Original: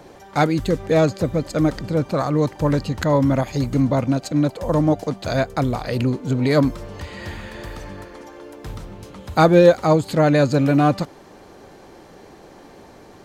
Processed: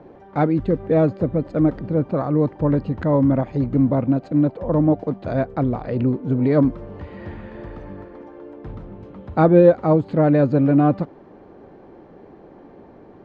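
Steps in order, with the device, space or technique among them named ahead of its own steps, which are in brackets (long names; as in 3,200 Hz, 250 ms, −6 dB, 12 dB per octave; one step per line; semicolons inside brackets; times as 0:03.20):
phone in a pocket (low-pass filter 3,000 Hz 12 dB per octave; parametric band 280 Hz +5.5 dB 2.3 octaves; high-shelf EQ 2,300 Hz −12 dB)
level −3.5 dB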